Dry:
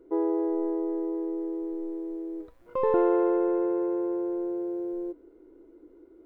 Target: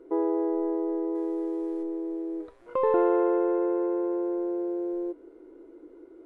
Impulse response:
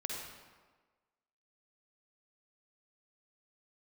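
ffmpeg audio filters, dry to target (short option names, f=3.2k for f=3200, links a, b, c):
-filter_complex "[0:a]bass=f=250:g=-10,treble=f=4k:g=-4,bandreject=f=201.5:t=h:w=4,bandreject=f=403:t=h:w=4,bandreject=f=604.5:t=h:w=4,bandreject=f=806:t=h:w=4,bandreject=f=1.0075k:t=h:w=4,bandreject=f=1.209k:t=h:w=4,bandreject=f=1.4105k:t=h:w=4,bandreject=f=1.612k:t=h:w=4,bandreject=f=1.8135k:t=h:w=4,bandreject=f=2.015k:t=h:w=4,bandreject=f=2.2165k:t=h:w=4,bandreject=f=2.418k:t=h:w=4,bandreject=f=2.6195k:t=h:w=4,bandreject=f=2.821k:t=h:w=4,bandreject=f=3.0225k:t=h:w=4,bandreject=f=3.224k:t=h:w=4,bandreject=f=3.4255k:t=h:w=4,bandreject=f=3.627k:t=h:w=4,bandreject=f=3.8285k:t=h:w=4,bandreject=f=4.03k:t=h:w=4,bandreject=f=4.2315k:t=h:w=4,bandreject=f=4.433k:t=h:w=4,bandreject=f=4.6345k:t=h:w=4,bandreject=f=4.836k:t=h:w=4,bandreject=f=5.0375k:t=h:w=4,bandreject=f=5.239k:t=h:w=4,bandreject=f=5.4405k:t=h:w=4,bandreject=f=5.642k:t=h:w=4,bandreject=f=5.8435k:t=h:w=4,bandreject=f=6.045k:t=h:w=4,bandreject=f=6.2465k:t=h:w=4,bandreject=f=6.448k:t=h:w=4,bandreject=f=6.6495k:t=h:w=4,bandreject=f=6.851k:t=h:w=4,asplit=2[a][b];[b]acompressor=threshold=-38dB:ratio=6,volume=1dB[c];[a][c]amix=inputs=2:normalize=0,asettb=1/sr,asplit=3[d][e][f];[d]atrim=end=1.154[g];[e]atrim=start=1.15:end=1.83,asetpts=PTS-STARTPTS,afade=t=in:d=0.004:c=qsin,afade=t=out:st=0.676:d=0.004:c=qsin,highshelf=f=2.2k:g=10[h];[f]atrim=start=1.826[i];[g][h]acrossfade=d=0.004:c1=hsin:c2=qsin[j];[j][i]acrossfade=d=0.004:c1=qsin:c2=hsin" -ar 48000 -c:a ac3 -b:a 64k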